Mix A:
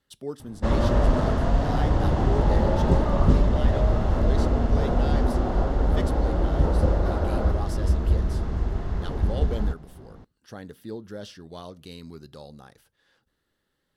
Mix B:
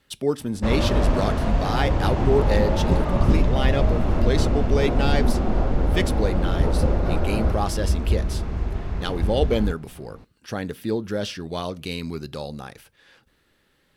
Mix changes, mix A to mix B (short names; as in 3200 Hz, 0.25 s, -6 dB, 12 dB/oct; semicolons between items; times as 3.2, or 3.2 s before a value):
speech +11.0 dB; second sound: remove HPF 310 Hz; master: add bell 2400 Hz +8.5 dB 0.36 oct